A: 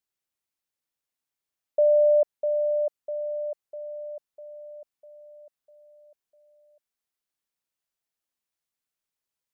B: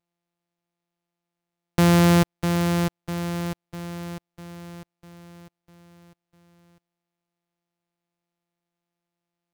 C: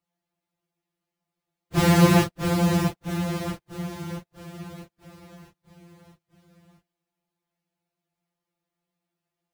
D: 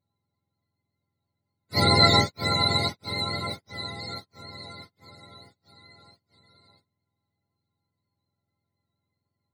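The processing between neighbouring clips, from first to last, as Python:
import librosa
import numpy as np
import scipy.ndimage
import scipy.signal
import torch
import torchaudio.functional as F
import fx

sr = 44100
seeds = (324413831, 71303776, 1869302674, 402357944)

y1 = np.r_[np.sort(x[:len(x) // 256 * 256].reshape(-1, 256), axis=1).ravel(), x[len(x) // 256 * 256:]]
y1 = y1 * 10.0 ** (2.5 / 20.0)
y2 = fx.phase_scramble(y1, sr, seeds[0], window_ms=100)
y3 = fx.octave_mirror(y2, sr, pivot_hz=840.0)
y3 = y3 * 10.0 ** (2.0 / 20.0)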